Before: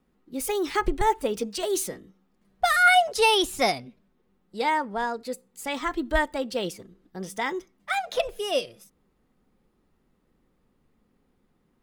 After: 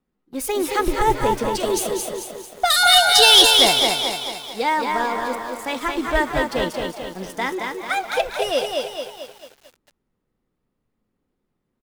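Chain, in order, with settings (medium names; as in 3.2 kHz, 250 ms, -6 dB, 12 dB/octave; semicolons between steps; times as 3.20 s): 2.70–3.51 s: resonant high shelf 2.7 kHz +9.5 dB, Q 3; waveshaping leveller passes 2; frequency-shifting echo 193 ms, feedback 36%, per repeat +100 Hz, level -10 dB; on a send at -23 dB: reverberation RT60 0.90 s, pre-delay 5 ms; on the sum: bit-crushed delay 222 ms, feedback 55%, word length 7-bit, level -4 dB; trim -4 dB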